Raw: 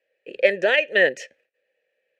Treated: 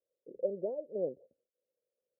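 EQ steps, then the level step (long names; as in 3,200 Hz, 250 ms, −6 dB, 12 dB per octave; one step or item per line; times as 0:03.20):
Gaussian smoothing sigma 17 samples
−7.0 dB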